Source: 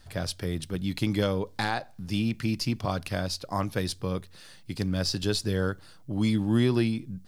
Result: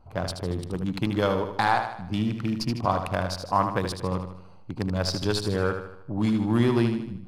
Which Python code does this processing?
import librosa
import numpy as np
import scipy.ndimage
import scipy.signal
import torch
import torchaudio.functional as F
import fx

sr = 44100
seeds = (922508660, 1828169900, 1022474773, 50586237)

y = fx.wiener(x, sr, points=25)
y = fx.peak_eq(y, sr, hz=1000.0, db=11.0, octaves=1.3)
y = fx.echo_feedback(y, sr, ms=77, feedback_pct=48, wet_db=-7.5)